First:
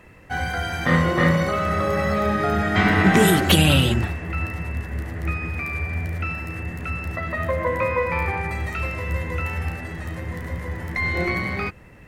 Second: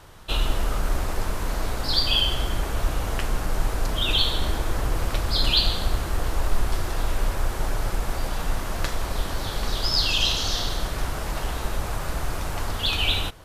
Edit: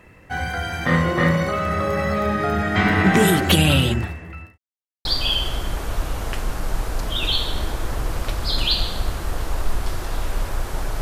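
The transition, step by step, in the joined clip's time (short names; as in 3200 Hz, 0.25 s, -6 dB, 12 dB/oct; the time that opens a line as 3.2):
first
3.9–4.58 fade out linear
4.58–5.05 mute
5.05 switch to second from 1.91 s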